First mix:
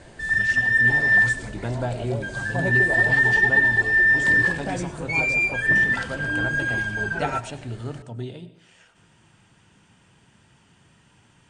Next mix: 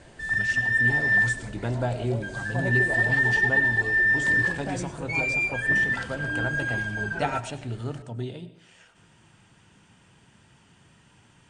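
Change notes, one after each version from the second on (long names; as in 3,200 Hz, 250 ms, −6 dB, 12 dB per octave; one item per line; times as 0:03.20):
background −4.0 dB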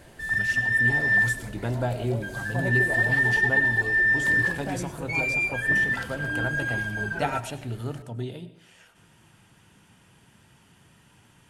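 master: remove Butterworth low-pass 9,300 Hz 96 dB per octave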